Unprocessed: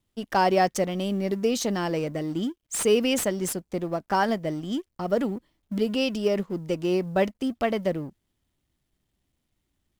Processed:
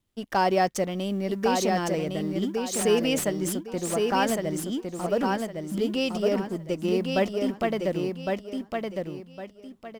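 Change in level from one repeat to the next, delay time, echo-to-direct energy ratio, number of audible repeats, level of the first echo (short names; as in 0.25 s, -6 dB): -11.0 dB, 1.109 s, -3.5 dB, 3, -4.0 dB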